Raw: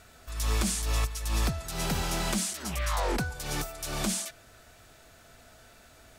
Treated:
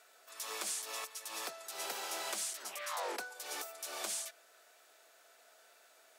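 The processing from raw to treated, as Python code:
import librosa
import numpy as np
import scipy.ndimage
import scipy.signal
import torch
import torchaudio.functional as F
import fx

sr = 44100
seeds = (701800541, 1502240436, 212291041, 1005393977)

y = scipy.signal.sosfilt(scipy.signal.butter(4, 420.0, 'highpass', fs=sr, output='sos'), x)
y = fx.high_shelf(y, sr, hz=9700.0, db=3.5)
y = y * 10.0 ** (-7.5 / 20.0)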